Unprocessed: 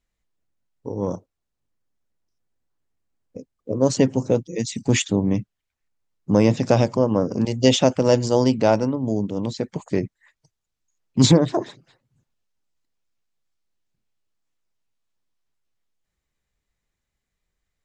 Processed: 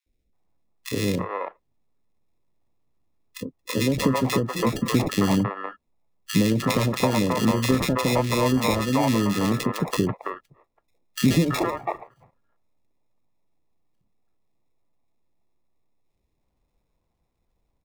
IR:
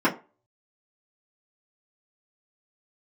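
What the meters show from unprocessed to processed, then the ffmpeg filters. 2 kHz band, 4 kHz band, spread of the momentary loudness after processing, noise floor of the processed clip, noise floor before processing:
+4.0 dB, −1.5 dB, 14 LU, −75 dBFS, −81 dBFS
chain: -filter_complex "[0:a]acrusher=samples=29:mix=1:aa=0.000001,acrossover=split=150|6500[link_01][link_02][link_03];[link_01]acompressor=threshold=-37dB:ratio=4[link_04];[link_02]acompressor=threshold=-24dB:ratio=4[link_05];[link_03]acompressor=threshold=-43dB:ratio=4[link_06];[link_04][link_05][link_06]amix=inputs=3:normalize=0,acrossover=split=520|1800[link_07][link_08][link_09];[link_07]adelay=60[link_10];[link_08]adelay=330[link_11];[link_10][link_11][link_09]amix=inputs=3:normalize=0,volume=6.5dB"

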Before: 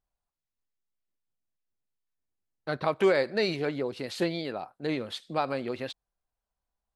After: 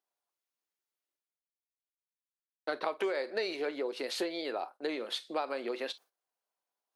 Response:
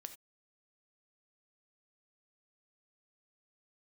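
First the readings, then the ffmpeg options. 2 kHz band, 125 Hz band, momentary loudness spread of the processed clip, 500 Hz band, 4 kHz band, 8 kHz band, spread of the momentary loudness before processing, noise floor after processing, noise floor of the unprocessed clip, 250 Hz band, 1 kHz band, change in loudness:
−5.0 dB, below −25 dB, 5 LU, −6.0 dB, −1.5 dB, +0.5 dB, 12 LU, below −85 dBFS, below −85 dBFS, −8.0 dB, −4.5 dB, −5.5 dB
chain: -filter_complex "[0:a]agate=range=-47dB:threshold=-51dB:ratio=16:detection=peak,asplit=2[link_01][link_02];[1:a]atrim=start_sample=2205,asetrate=79380,aresample=44100[link_03];[link_02][link_03]afir=irnorm=-1:irlink=0,volume=11.5dB[link_04];[link_01][link_04]amix=inputs=2:normalize=0,acompressor=threshold=-25dB:ratio=6,highpass=frequency=320:width=0.5412,highpass=frequency=320:width=1.3066,bandreject=frequency=7600:width=17,areverse,acompressor=mode=upward:threshold=-54dB:ratio=2.5,areverse,volume=-4dB"

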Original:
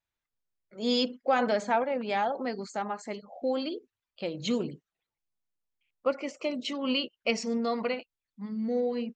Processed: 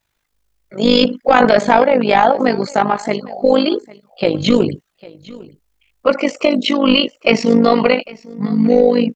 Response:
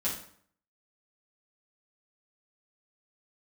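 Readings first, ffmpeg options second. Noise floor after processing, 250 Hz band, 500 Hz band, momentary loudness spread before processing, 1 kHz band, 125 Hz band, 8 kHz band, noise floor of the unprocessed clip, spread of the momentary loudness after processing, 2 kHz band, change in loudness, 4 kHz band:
−70 dBFS, +17.0 dB, +16.5 dB, 10 LU, +16.0 dB, +20.5 dB, +9.5 dB, below −85 dBFS, 9 LU, +16.0 dB, +16.0 dB, +14.5 dB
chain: -filter_complex "[0:a]acrossover=split=4400[link_01][link_02];[link_02]acompressor=threshold=-54dB:ratio=4:attack=1:release=60[link_03];[link_01][link_03]amix=inputs=2:normalize=0,apsyclip=23.5dB,tremolo=f=51:d=0.75,asplit=2[link_04][link_05];[link_05]aecho=0:1:802:0.0841[link_06];[link_04][link_06]amix=inputs=2:normalize=0,volume=-2dB"

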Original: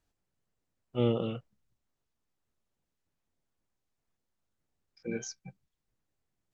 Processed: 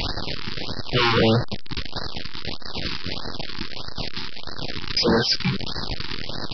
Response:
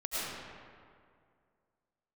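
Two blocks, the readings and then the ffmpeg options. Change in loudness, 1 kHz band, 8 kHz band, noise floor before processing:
+9.0 dB, +22.0 dB, can't be measured, −84 dBFS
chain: -af "aeval=exprs='val(0)+0.5*0.0133*sgn(val(0))':channel_layout=same,crystalizer=i=3.5:c=0,aresample=11025,aeval=exprs='0.2*sin(PI/2*5.62*val(0)/0.2)':channel_layout=same,aresample=44100,afftfilt=real='re*(1-between(b*sr/1024,550*pow(2800/550,0.5+0.5*sin(2*PI*1.6*pts/sr))/1.41,550*pow(2800/550,0.5+0.5*sin(2*PI*1.6*pts/sr))*1.41))':imag='im*(1-between(b*sr/1024,550*pow(2800/550,0.5+0.5*sin(2*PI*1.6*pts/sr))/1.41,550*pow(2800/550,0.5+0.5*sin(2*PI*1.6*pts/sr))*1.41))':win_size=1024:overlap=0.75"

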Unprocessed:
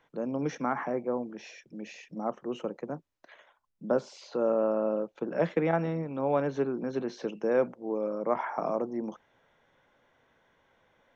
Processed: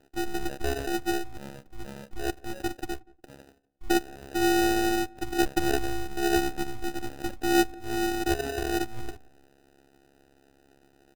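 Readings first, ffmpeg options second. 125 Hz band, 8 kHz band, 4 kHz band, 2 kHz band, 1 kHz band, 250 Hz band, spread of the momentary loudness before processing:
0.0 dB, can't be measured, +17.0 dB, +9.5 dB, +4.5 dB, +4.5 dB, 13 LU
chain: -filter_complex "[0:a]afreqshift=-190,afftfilt=real='hypot(re,im)*cos(PI*b)':imag='0':win_size=512:overlap=0.75,asplit=2[link_01][link_02];[link_02]acompressor=threshold=-41dB:ratio=12,volume=-2dB[link_03];[link_01][link_03]amix=inputs=2:normalize=0,acrusher=samples=40:mix=1:aa=0.000001,asplit=2[link_04][link_05];[link_05]adelay=178,lowpass=frequency=970:poles=1,volume=-22dB,asplit=2[link_06][link_07];[link_07]adelay=178,lowpass=frequency=970:poles=1,volume=0.32[link_08];[link_04][link_06][link_08]amix=inputs=3:normalize=0,volume=4dB"

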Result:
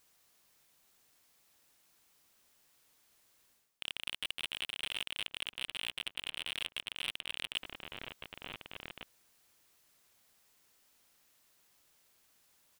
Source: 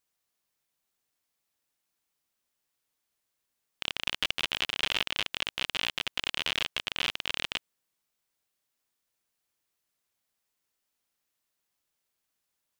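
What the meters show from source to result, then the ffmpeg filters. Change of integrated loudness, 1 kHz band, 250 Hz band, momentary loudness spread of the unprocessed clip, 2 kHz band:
−9.0 dB, −11.0 dB, −9.0 dB, 4 LU, −8.5 dB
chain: -filter_complex "[0:a]volume=20.5dB,asoftclip=hard,volume=-20.5dB,asplit=2[link_01][link_02];[link_02]adelay=1458,volume=-14dB,highshelf=frequency=4000:gain=-32.8[link_03];[link_01][link_03]amix=inputs=2:normalize=0,areverse,acompressor=threshold=-48dB:ratio=6,areverse,volume=12.5dB"

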